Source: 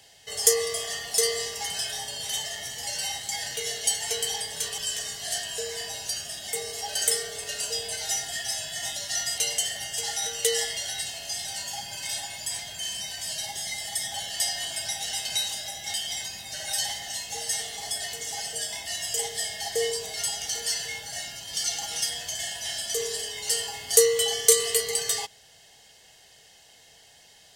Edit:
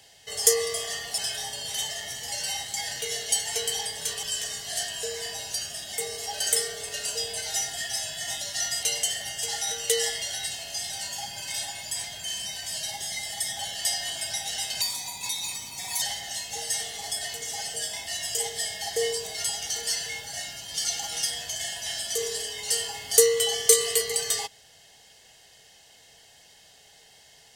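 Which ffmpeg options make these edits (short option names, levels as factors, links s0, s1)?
-filter_complex "[0:a]asplit=4[s0][s1][s2][s3];[s0]atrim=end=1.182[s4];[s1]atrim=start=1.728:end=15.364[s5];[s2]atrim=start=15.36:end=16.81,asetpts=PTS-STARTPTS,asetrate=52920,aresample=44100[s6];[s3]atrim=start=16.806[s7];[s4][s5]acrossfade=d=0.004:c1=hsin:c2=hsin[s8];[s8][s6]acrossfade=d=0.004:c1=hsin:c2=hsin[s9];[s9][s7]acrossfade=d=0.004:c1=hsin:c2=hsin"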